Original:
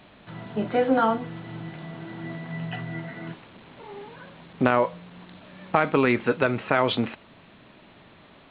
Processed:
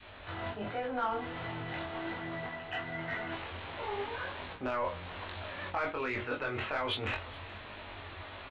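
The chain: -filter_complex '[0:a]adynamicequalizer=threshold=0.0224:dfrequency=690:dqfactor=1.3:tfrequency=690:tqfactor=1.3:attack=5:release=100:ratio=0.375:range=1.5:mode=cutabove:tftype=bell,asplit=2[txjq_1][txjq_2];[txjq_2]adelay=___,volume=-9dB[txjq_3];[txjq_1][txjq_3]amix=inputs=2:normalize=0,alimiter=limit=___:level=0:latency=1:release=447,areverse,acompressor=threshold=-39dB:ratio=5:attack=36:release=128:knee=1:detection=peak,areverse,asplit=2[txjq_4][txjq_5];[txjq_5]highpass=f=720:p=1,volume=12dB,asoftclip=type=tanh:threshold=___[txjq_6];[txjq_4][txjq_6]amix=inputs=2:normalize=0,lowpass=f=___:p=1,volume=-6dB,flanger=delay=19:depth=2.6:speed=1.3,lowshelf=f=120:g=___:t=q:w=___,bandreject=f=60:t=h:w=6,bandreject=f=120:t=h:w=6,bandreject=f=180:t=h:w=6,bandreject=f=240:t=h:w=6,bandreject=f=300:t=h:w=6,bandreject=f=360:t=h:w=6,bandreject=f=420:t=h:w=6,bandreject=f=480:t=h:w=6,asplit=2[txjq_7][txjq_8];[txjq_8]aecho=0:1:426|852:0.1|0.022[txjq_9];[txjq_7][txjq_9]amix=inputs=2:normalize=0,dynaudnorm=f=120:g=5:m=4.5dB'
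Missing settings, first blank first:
24, -12.5dB, -21.5dB, 3300, 11.5, 3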